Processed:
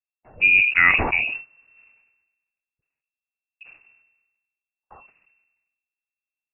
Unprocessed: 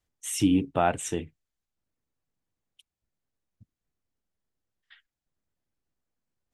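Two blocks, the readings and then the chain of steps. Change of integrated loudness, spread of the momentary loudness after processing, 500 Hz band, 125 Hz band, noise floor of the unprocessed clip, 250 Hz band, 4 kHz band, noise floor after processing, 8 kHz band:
+10.5 dB, 12 LU, −5.0 dB, −3.5 dB, below −85 dBFS, −11.5 dB, +5.5 dB, below −85 dBFS, below −40 dB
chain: voice inversion scrambler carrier 2,700 Hz
noise gate with hold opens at −52 dBFS
automatic gain control gain up to 7.5 dB
dynamic equaliser 770 Hz, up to +3 dB, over −44 dBFS, Q 3.6
level that may fall only so fast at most 50 dB per second
level +1 dB

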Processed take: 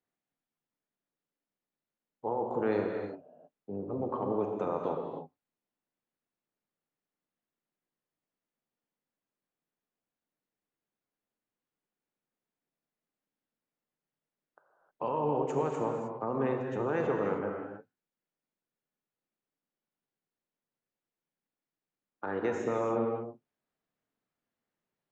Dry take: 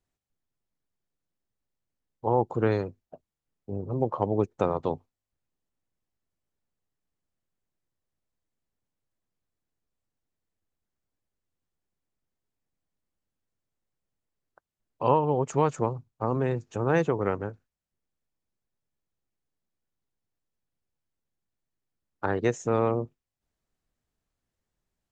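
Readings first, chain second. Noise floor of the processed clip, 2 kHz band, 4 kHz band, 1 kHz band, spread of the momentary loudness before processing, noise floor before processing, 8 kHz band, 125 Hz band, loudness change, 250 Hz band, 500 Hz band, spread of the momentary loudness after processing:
below −85 dBFS, −5.0 dB, can't be measured, −5.5 dB, 10 LU, below −85 dBFS, below −10 dB, −11.0 dB, −5.5 dB, −4.0 dB, −4.0 dB, 12 LU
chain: three-way crossover with the lows and the highs turned down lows −23 dB, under 150 Hz, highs −12 dB, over 3,500 Hz
brickwall limiter −19.5 dBFS, peak gain reduction 10 dB
reverb whose tail is shaped and stops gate 340 ms flat, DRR 1 dB
level −3 dB

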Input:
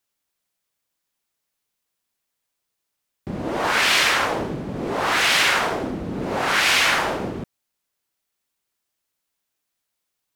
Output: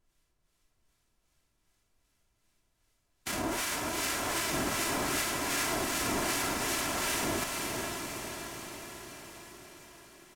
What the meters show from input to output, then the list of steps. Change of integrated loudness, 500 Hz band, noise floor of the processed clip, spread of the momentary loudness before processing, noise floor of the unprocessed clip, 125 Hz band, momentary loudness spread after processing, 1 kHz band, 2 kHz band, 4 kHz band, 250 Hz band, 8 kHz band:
−12.0 dB, −9.0 dB, −76 dBFS, 13 LU, −80 dBFS, −8.5 dB, 16 LU, −10.5 dB, −13.5 dB, −12.5 dB, −6.5 dB, −3.0 dB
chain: spectral envelope flattened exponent 0.3
parametric band 3,900 Hz −7 dB 0.88 octaves
comb filter 3 ms, depth 48%
compressor whose output falls as the input rises −24 dBFS, ratio −0.5
brickwall limiter −20 dBFS, peak gain reduction 10 dB
two-band tremolo in antiphase 2.6 Hz, depth 70%, crossover 1,300 Hz
feedback delay with all-pass diffusion 464 ms, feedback 57%, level −4.5 dB
background noise brown −75 dBFS
feedback delay with all-pass diffusion 583 ms, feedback 55%, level −9 dB
linearly interpolated sample-rate reduction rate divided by 2×

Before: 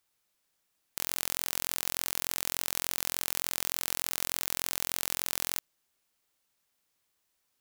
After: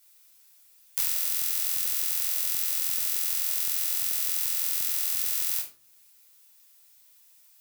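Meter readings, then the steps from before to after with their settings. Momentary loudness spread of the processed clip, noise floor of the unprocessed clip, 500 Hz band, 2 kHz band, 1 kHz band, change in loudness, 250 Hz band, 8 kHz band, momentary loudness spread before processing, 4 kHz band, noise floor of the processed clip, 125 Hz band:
1 LU, −78 dBFS, can't be measured, −3.0 dB, −7.5 dB, +6.5 dB, below −15 dB, +3.5 dB, 2 LU, +1.0 dB, −58 dBFS, below −10 dB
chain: spectral tilt +4.5 dB per octave
downward compressor 4 to 1, threshold −25 dBFS, peak gain reduction 14 dB
rectangular room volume 370 cubic metres, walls furnished, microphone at 4.8 metres
level −2.5 dB

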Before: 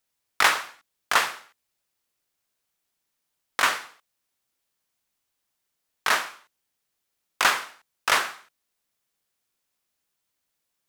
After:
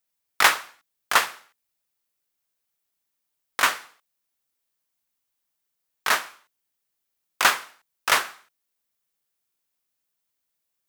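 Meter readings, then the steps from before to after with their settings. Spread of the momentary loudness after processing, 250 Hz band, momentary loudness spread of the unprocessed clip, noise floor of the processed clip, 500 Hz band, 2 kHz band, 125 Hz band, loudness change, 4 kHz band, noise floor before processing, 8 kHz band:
16 LU, +0.5 dB, 15 LU, −80 dBFS, +0.5 dB, +1.0 dB, can't be measured, +1.5 dB, +1.0 dB, −80 dBFS, +2.5 dB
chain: high-shelf EQ 12,000 Hz +8 dB
expander for the loud parts 1.5 to 1, over −30 dBFS
level +3 dB

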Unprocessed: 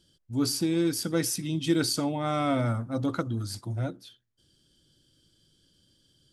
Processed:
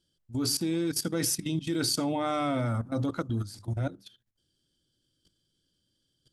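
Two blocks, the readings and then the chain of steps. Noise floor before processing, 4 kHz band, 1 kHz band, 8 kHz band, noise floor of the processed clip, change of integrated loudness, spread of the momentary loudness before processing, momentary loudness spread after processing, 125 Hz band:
−69 dBFS, 0.0 dB, −1.0 dB, +1.0 dB, −77 dBFS, −1.5 dB, 8 LU, 6 LU, −1.5 dB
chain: output level in coarse steps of 16 dB
mains-hum notches 50/100/150/200 Hz
level +4 dB

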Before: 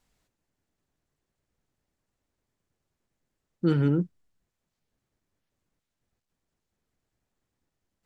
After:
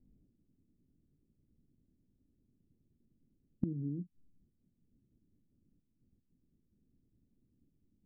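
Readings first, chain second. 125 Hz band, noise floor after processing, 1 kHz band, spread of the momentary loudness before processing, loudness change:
−14.0 dB, −78 dBFS, below −30 dB, 8 LU, −14.0 dB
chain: transistor ladder low-pass 320 Hz, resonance 40%
gate with flip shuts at −35 dBFS, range −25 dB
level +16 dB

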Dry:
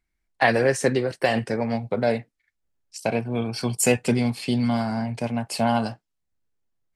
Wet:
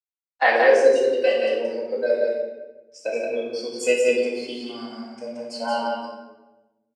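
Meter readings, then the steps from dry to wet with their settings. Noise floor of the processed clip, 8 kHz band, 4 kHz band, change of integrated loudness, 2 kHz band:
below −85 dBFS, −8.0 dB, 0.0 dB, +2.0 dB, +2.5 dB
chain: high-pass filter 400 Hz 24 dB per octave
noise reduction from a noise print of the clip's start 17 dB
high-shelf EQ 11,000 Hz −6 dB
bit reduction 11 bits
high-frequency loss of the air 99 metres
single-tap delay 176 ms −3.5 dB
rectangular room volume 530 cubic metres, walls mixed, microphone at 2 metres
level −1.5 dB

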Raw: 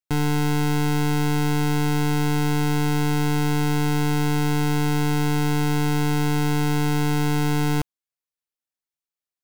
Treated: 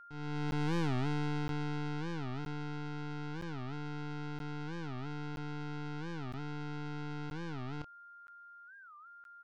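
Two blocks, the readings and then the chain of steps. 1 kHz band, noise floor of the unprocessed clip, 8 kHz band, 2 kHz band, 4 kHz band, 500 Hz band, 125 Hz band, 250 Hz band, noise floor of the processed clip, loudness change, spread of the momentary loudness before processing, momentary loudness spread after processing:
−16.0 dB, below −85 dBFS, below −25 dB, −16.5 dB, −18.0 dB, −16.5 dB, −17.0 dB, −17.0 dB, −55 dBFS, −17.0 dB, 0 LU, 19 LU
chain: fade in at the beginning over 2.90 s
low-pass filter 5,300 Hz 24 dB per octave
compressor whose output falls as the input rises −32 dBFS, ratio −1
double-tracking delay 27 ms −8.5 dB
soft clipping −19.5 dBFS, distortion −23 dB
steady tone 1,400 Hz −43 dBFS
regular buffer underruns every 0.97 s, samples 512, zero, from 0:00.51
wow of a warped record 45 rpm, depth 250 cents
level −8.5 dB

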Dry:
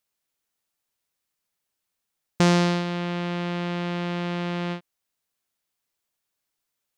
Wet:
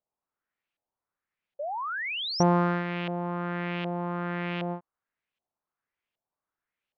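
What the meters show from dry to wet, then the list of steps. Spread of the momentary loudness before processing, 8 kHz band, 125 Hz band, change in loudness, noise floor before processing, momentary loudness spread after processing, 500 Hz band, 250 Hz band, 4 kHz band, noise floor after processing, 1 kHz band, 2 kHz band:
9 LU, −5.0 dB, −4.5 dB, −3.5 dB, −82 dBFS, 11 LU, −2.0 dB, −4.0 dB, −1.5 dB, below −85 dBFS, +1.0 dB, −1.0 dB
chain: auto-filter low-pass saw up 1.3 Hz 660–3,000 Hz
sound drawn into the spectrogram rise, 0:01.59–0:02.43, 550–6,000 Hz −28 dBFS
level −4.5 dB

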